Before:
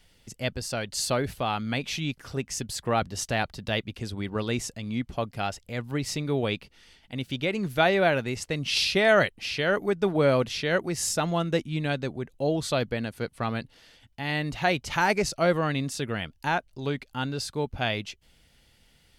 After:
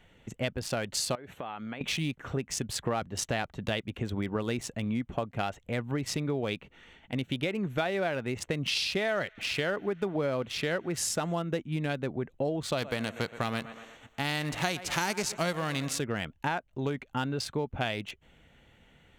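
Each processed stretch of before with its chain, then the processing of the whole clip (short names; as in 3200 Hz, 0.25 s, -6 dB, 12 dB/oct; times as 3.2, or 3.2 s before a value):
1.15–1.81 HPF 290 Hz 6 dB/oct + compressor 10:1, threshold -39 dBFS
8.85–11.42 upward compressor, threshold -34 dBFS + thin delay 0.1 s, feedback 84%, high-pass 2500 Hz, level -23 dB + mismatched tape noise reduction encoder only
12.77–15.98 spectral whitening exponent 0.6 + bell 6800 Hz +6.5 dB 1.1 oct + thinning echo 0.12 s, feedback 50%, high-pass 220 Hz, level -16 dB
whole clip: Wiener smoothing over 9 samples; low shelf 63 Hz -10 dB; compressor 6:1, threshold -34 dBFS; gain +6 dB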